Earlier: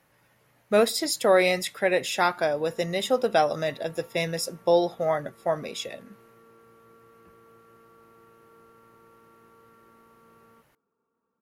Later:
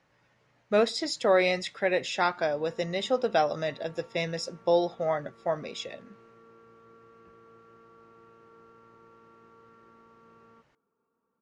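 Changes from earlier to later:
speech -3.0 dB; master: add low-pass 6.6 kHz 24 dB/octave

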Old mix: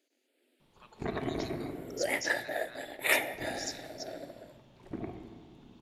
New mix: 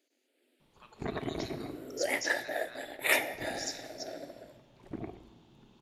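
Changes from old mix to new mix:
speech: send +6.5 dB; first sound: send -9.5 dB

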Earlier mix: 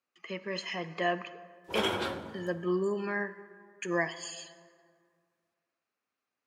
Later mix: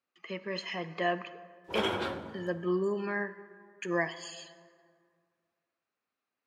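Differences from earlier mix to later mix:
speech: add peaking EQ 3.9 kHz +3 dB 0.55 oct; master: add treble shelf 5.3 kHz -8.5 dB

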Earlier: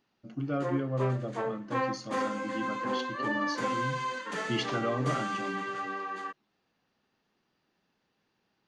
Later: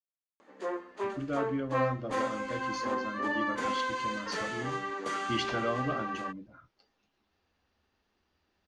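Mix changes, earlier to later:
speech: entry +0.80 s; master: add resonant low shelf 100 Hz +10 dB, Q 3

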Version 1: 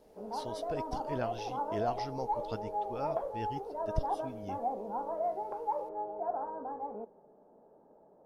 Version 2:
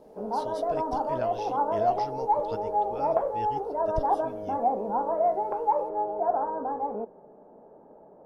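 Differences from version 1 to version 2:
background +10.0 dB; reverb: off

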